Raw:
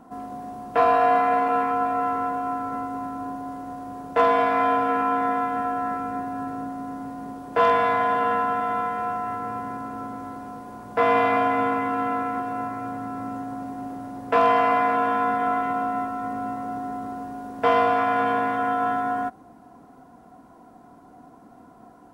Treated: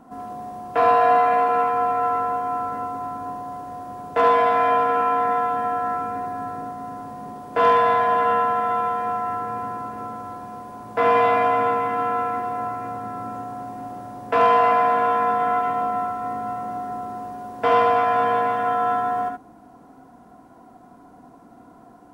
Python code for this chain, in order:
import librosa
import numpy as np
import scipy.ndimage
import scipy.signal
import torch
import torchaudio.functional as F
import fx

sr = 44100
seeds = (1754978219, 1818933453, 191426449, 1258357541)

y = x + 10.0 ** (-4.5 / 20.0) * np.pad(x, (int(72 * sr / 1000.0), 0))[:len(x)]